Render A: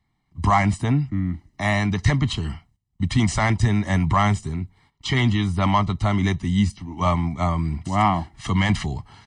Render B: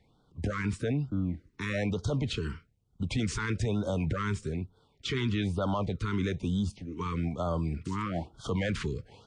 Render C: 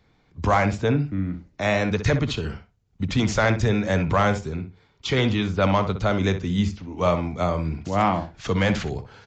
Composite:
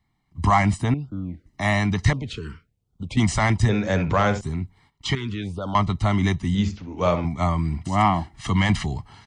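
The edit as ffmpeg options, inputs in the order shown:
-filter_complex "[1:a]asplit=3[a][b][c];[2:a]asplit=2[d][e];[0:a]asplit=6[f][g][h][i][j][k];[f]atrim=end=0.942[l];[a]atrim=start=0.938:end=1.462[m];[g]atrim=start=1.458:end=2.132[n];[b]atrim=start=2.128:end=3.172[o];[h]atrim=start=3.168:end=3.692[p];[d]atrim=start=3.688:end=4.412[q];[i]atrim=start=4.408:end=5.152[r];[c]atrim=start=5.148:end=5.752[s];[j]atrim=start=5.748:end=6.552[t];[e]atrim=start=6.548:end=7.252[u];[k]atrim=start=7.248[v];[l][m]acrossfade=d=0.004:c1=hsin:c2=hsin[w];[w][n]acrossfade=d=0.004:c1=hsin:c2=hsin[x];[x][o]acrossfade=d=0.004:c1=hsin:c2=hsin[y];[y][p]acrossfade=d=0.004:c1=hsin:c2=hsin[z];[z][q]acrossfade=d=0.004:c1=hsin:c2=hsin[aa];[aa][r]acrossfade=d=0.004:c1=hsin:c2=hsin[ab];[ab][s]acrossfade=d=0.004:c1=hsin:c2=hsin[ac];[ac][t]acrossfade=d=0.004:c1=hsin:c2=hsin[ad];[ad][u]acrossfade=d=0.004:c1=hsin:c2=hsin[ae];[ae][v]acrossfade=d=0.004:c1=hsin:c2=hsin"

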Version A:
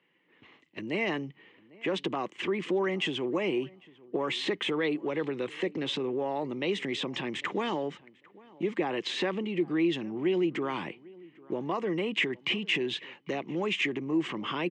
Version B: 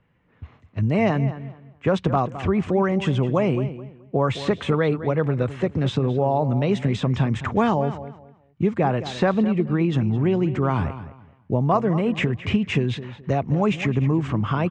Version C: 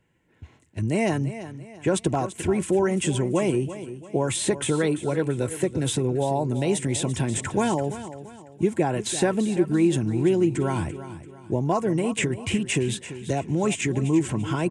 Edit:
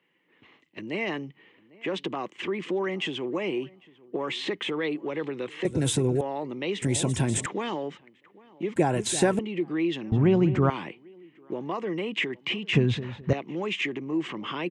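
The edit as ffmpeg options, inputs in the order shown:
-filter_complex "[2:a]asplit=3[a][b][c];[1:a]asplit=2[d][e];[0:a]asplit=6[f][g][h][i][j][k];[f]atrim=end=5.652[l];[a]atrim=start=5.648:end=6.212[m];[g]atrim=start=6.208:end=6.822[n];[b]atrim=start=6.818:end=7.462[o];[h]atrim=start=7.458:end=8.762[p];[c]atrim=start=8.758:end=9.392[q];[i]atrim=start=9.388:end=10.122[r];[d]atrim=start=10.118:end=10.702[s];[j]atrim=start=10.698:end=12.732[t];[e]atrim=start=12.728:end=13.332[u];[k]atrim=start=13.328[v];[l][m]acrossfade=d=0.004:c1=hsin:c2=hsin[w];[w][n]acrossfade=d=0.004:c1=hsin:c2=hsin[x];[x][o]acrossfade=d=0.004:c1=hsin:c2=hsin[y];[y][p]acrossfade=d=0.004:c1=hsin:c2=hsin[z];[z][q]acrossfade=d=0.004:c1=hsin:c2=hsin[aa];[aa][r]acrossfade=d=0.004:c1=hsin:c2=hsin[ab];[ab][s]acrossfade=d=0.004:c1=hsin:c2=hsin[ac];[ac][t]acrossfade=d=0.004:c1=hsin:c2=hsin[ad];[ad][u]acrossfade=d=0.004:c1=hsin:c2=hsin[ae];[ae][v]acrossfade=d=0.004:c1=hsin:c2=hsin"

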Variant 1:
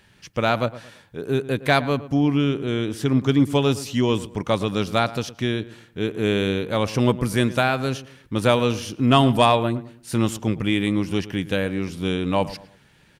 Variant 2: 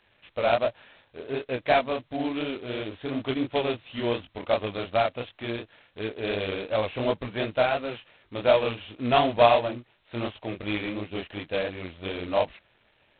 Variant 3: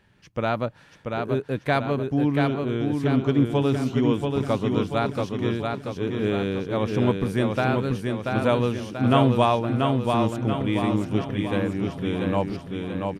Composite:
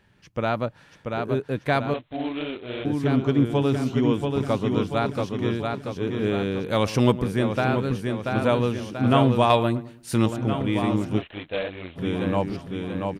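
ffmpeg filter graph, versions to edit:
-filter_complex "[1:a]asplit=2[a][b];[0:a]asplit=2[c][d];[2:a]asplit=5[e][f][g][h][i];[e]atrim=end=1.942[j];[a]atrim=start=1.938:end=2.852[k];[f]atrim=start=2.848:end=6.642[l];[c]atrim=start=6.638:end=7.222[m];[g]atrim=start=7.218:end=9.502[n];[d]atrim=start=9.498:end=10.262[o];[h]atrim=start=10.258:end=11.22[p];[b]atrim=start=11.18:end=11.99[q];[i]atrim=start=11.95[r];[j][k]acrossfade=d=0.004:c1=hsin:c2=hsin[s];[s][l]acrossfade=d=0.004:c1=hsin:c2=hsin[t];[t][m]acrossfade=d=0.004:c1=hsin:c2=hsin[u];[u][n]acrossfade=d=0.004:c1=hsin:c2=hsin[v];[v][o]acrossfade=d=0.004:c1=hsin:c2=hsin[w];[w][p]acrossfade=d=0.004:c1=hsin:c2=hsin[x];[x][q]acrossfade=d=0.04:c1=tri:c2=tri[y];[y][r]acrossfade=d=0.04:c1=tri:c2=tri"

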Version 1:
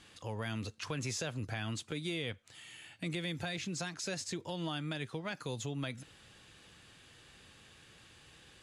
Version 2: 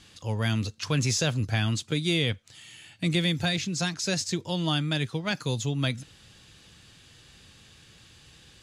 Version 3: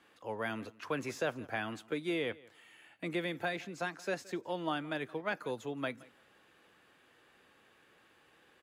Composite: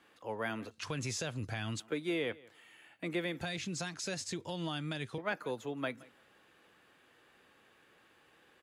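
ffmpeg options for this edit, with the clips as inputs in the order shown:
-filter_complex "[0:a]asplit=2[a][b];[2:a]asplit=3[c][d][e];[c]atrim=end=0.712[f];[a]atrim=start=0.708:end=1.802[g];[d]atrim=start=1.798:end=3.412[h];[b]atrim=start=3.408:end=5.182[i];[e]atrim=start=5.178[j];[f][g]acrossfade=d=0.004:c1=hsin:c2=hsin[k];[k][h]acrossfade=d=0.004:c1=hsin:c2=hsin[l];[l][i]acrossfade=d=0.004:c1=hsin:c2=hsin[m];[m][j]acrossfade=d=0.004:c1=hsin:c2=hsin"

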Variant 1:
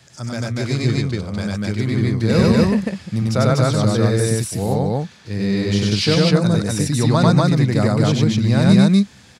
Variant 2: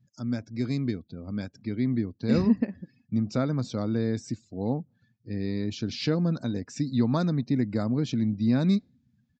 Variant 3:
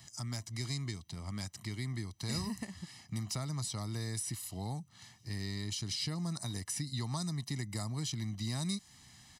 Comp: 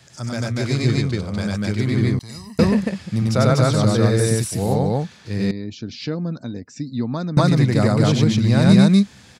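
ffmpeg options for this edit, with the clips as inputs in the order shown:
-filter_complex "[0:a]asplit=3[a][b][c];[a]atrim=end=2.192[d];[2:a]atrim=start=2.188:end=2.592[e];[b]atrim=start=2.588:end=5.512[f];[1:a]atrim=start=5.508:end=7.372[g];[c]atrim=start=7.368[h];[d][e]acrossfade=d=0.004:c1=hsin:c2=hsin[i];[i][f]acrossfade=d=0.004:c1=hsin:c2=hsin[j];[j][g]acrossfade=d=0.004:c1=hsin:c2=hsin[k];[k][h]acrossfade=d=0.004:c1=hsin:c2=hsin"

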